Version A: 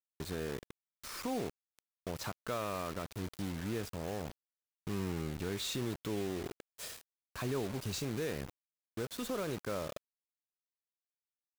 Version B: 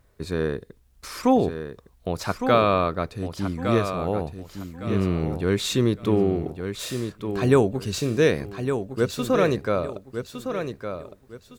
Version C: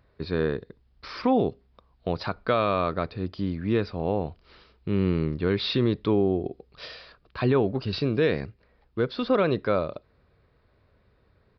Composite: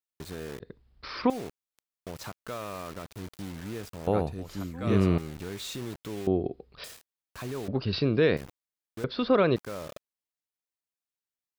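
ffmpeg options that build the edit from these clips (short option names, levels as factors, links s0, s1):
-filter_complex "[2:a]asplit=4[s0][s1][s2][s3];[0:a]asplit=6[s4][s5][s6][s7][s8][s9];[s4]atrim=end=0.602[s10];[s0]atrim=start=0.598:end=1.302[s11];[s5]atrim=start=1.298:end=4.072[s12];[1:a]atrim=start=4.068:end=5.182[s13];[s6]atrim=start=5.178:end=6.272[s14];[s1]atrim=start=6.268:end=6.842[s15];[s7]atrim=start=6.838:end=7.682[s16];[s2]atrim=start=7.678:end=8.372[s17];[s8]atrim=start=8.368:end=9.042[s18];[s3]atrim=start=9.038:end=9.562[s19];[s9]atrim=start=9.558[s20];[s10][s11]acrossfade=d=0.004:c1=hsin:c2=hsin[s21];[s21][s12]acrossfade=d=0.004:c1=hsin:c2=hsin[s22];[s22][s13]acrossfade=d=0.004:c1=hsin:c2=hsin[s23];[s23][s14]acrossfade=d=0.004:c1=hsin:c2=hsin[s24];[s24][s15]acrossfade=d=0.004:c1=hsin:c2=hsin[s25];[s25][s16]acrossfade=d=0.004:c1=hsin:c2=hsin[s26];[s26][s17]acrossfade=d=0.004:c1=hsin:c2=hsin[s27];[s27][s18]acrossfade=d=0.004:c1=hsin:c2=hsin[s28];[s28][s19]acrossfade=d=0.004:c1=hsin:c2=hsin[s29];[s29][s20]acrossfade=d=0.004:c1=hsin:c2=hsin"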